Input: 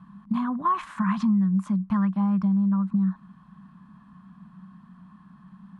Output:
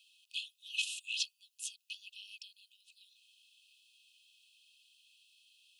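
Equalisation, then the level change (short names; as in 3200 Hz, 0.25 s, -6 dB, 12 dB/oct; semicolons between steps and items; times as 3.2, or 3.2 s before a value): brick-wall FIR high-pass 2500 Hz; +14.0 dB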